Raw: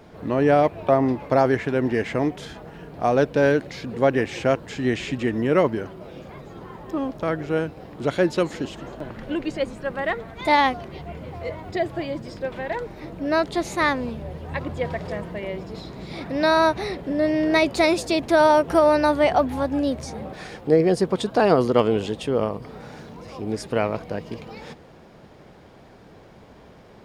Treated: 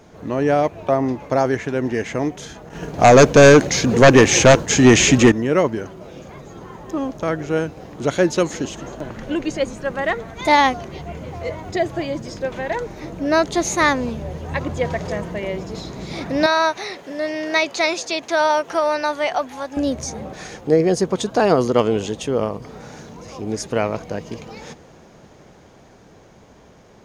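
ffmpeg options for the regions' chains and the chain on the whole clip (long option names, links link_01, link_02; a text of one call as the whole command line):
ffmpeg -i in.wav -filter_complex "[0:a]asettb=1/sr,asplit=3[link_01][link_02][link_03];[link_01]atrim=end=2.694[link_04];[link_02]atrim=start=2.69:end=5.32,asetpts=PTS-STARTPTS,afade=type=in:duration=0.004:curve=qsin,afade=type=out:start_time=2.626:duration=0.004:curve=qsin,agate=range=-33dB:threshold=-36dB:ratio=3:release=100:detection=peak,equalizer=frequency=6300:width=1.4:gain=3,aeval=exprs='0.531*sin(PI/2*2.82*val(0)/0.531)':channel_layout=same[link_05];[link_03]atrim=start=5.316[link_06];[link_04][link_05]acrossfade=duration=0.004:curve1=hsin:curve2=qsin[link_07];[link_07][link_06]acrossfade=duration=0.004:curve1=qsin:curve2=hsin,asettb=1/sr,asplit=3[link_08][link_09][link_10];[link_08]atrim=end=16.464[link_11];[link_09]atrim=start=16.46:end=19.77,asetpts=PTS-STARTPTS,afade=type=in:duration=0.004:curve=qsin,afade=type=out:start_time=3.306:duration=0.004:curve=qsin,highpass=frequency=1100:poles=1,acrossover=split=5700[link_12][link_13];[link_13]acompressor=threshold=-56dB:ratio=4:attack=1:release=60[link_14];[link_12][link_14]amix=inputs=2:normalize=0[link_15];[link_10]atrim=start=19.766[link_16];[link_11][link_15]acrossfade=duration=0.004:curve1=hsin:curve2=qsin[link_17];[link_17][link_16]acrossfade=duration=0.004:curve1=qsin:curve2=hsin,equalizer=frequency=6400:width_type=o:width=0.32:gain=13,dynaudnorm=framelen=290:gausssize=17:maxgain=5.5dB" out.wav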